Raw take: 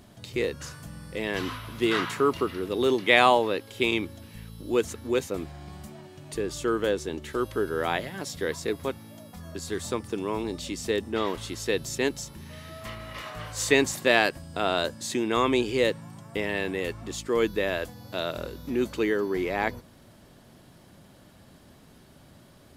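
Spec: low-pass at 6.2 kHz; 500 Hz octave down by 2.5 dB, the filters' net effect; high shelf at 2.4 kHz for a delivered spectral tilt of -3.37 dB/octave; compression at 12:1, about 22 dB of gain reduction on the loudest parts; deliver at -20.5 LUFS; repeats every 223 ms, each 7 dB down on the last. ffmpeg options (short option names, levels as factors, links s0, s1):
-af "lowpass=6200,equalizer=f=500:t=o:g=-3.5,highshelf=f=2400:g=7,acompressor=threshold=0.02:ratio=12,aecho=1:1:223|446|669|892|1115:0.447|0.201|0.0905|0.0407|0.0183,volume=7.5"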